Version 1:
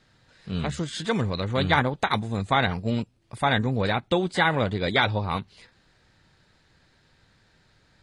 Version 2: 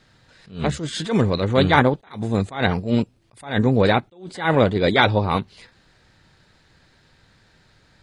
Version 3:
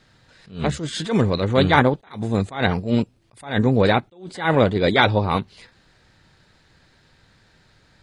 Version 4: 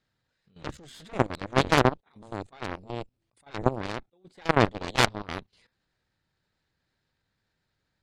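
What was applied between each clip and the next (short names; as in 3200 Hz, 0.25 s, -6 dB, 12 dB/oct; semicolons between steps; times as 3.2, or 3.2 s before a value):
dynamic EQ 380 Hz, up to +6 dB, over -39 dBFS, Q 0.77; attack slew limiter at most 150 dB/s; gain +5 dB
nothing audible
added harmonics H 3 -19 dB, 4 -7 dB, 6 -21 dB, 7 -17 dB, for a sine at -1 dBFS; level quantiser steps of 15 dB; gain -3.5 dB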